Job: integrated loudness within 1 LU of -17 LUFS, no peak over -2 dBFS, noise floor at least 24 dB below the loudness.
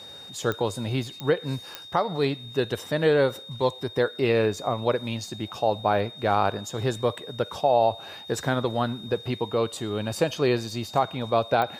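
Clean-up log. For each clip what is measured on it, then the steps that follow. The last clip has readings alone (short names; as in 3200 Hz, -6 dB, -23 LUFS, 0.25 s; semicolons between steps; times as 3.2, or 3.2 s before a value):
clicks 4; steady tone 3700 Hz; tone level -41 dBFS; loudness -26.0 LUFS; peak -9.0 dBFS; loudness target -17.0 LUFS
-> de-click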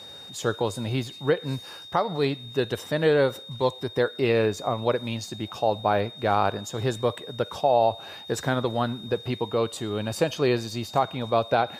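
clicks 0; steady tone 3700 Hz; tone level -41 dBFS
-> notch 3700 Hz, Q 30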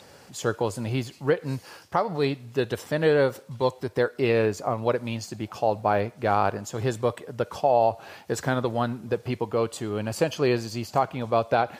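steady tone none; loudness -26.5 LUFS; peak -9.5 dBFS; loudness target -17.0 LUFS
-> gain +9.5 dB; limiter -2 dBFS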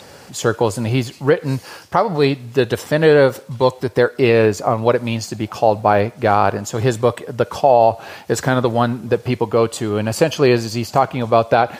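loudness -17.5 LUFS; peak -2.0 dBFS; noise floor -42 dBFS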